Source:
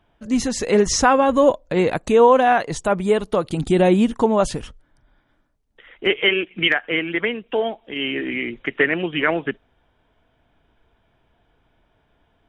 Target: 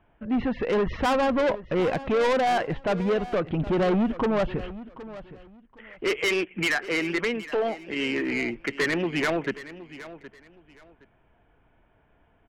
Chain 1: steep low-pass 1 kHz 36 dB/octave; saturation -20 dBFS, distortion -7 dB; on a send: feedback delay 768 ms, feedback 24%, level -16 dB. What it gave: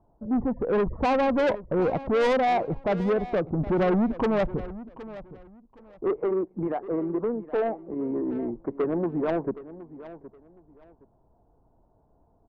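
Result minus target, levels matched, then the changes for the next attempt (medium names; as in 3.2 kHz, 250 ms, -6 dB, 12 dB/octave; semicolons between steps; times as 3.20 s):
2 kHz band -8.0 dB
change: steep low-pass 2.8 kHz 36 dB/octave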